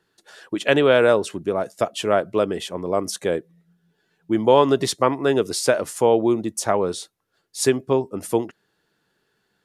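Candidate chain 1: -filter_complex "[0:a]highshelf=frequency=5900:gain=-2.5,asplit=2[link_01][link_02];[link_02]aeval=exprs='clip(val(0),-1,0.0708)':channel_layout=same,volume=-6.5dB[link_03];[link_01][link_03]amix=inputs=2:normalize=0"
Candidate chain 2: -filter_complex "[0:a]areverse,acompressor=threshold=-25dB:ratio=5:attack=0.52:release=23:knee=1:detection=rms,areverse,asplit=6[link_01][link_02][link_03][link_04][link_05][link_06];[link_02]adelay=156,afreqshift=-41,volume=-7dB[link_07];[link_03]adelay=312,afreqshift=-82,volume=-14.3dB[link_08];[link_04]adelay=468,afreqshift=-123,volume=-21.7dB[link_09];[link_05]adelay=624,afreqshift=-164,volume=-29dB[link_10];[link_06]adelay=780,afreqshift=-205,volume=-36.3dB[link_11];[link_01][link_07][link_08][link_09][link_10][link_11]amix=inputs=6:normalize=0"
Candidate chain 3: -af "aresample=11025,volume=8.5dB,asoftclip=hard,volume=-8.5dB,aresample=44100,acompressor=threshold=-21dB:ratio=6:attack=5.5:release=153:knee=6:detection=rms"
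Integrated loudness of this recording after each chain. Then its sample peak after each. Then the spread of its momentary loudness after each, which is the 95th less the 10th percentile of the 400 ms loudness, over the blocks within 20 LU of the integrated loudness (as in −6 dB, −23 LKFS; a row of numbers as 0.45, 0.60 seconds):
−19.0, −29.5, −28.5 LKFS; −2.0, −17.0, −11.0 dBFS; 9, 11, 7 LU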